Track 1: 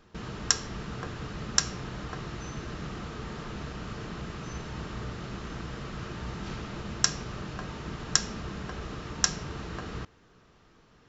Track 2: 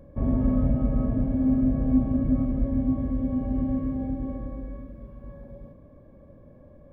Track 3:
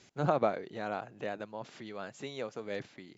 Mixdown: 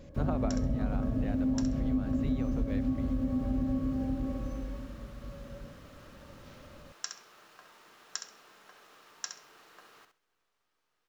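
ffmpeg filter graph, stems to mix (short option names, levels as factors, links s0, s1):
-filter_complex "[0:a]highpass=610,acrusher=bits=9:dc=4:mix=0:aa=0.000001,volume=0.2,asplit=2[s0][s1];[s1]volume=0.398[s2];[1:a]volume=0.794[s3];[2:a]bass=f=250:g=7,treble=f=4000:g=-6,volume=0.75[s4];[s2]aecho=0:1:66|132|198:1|0.19|0.0361[s5];[s0][s3][s4][s5]amix=inputs=4:normalize=0,acompressor=threshold=0.0501:ratio=6"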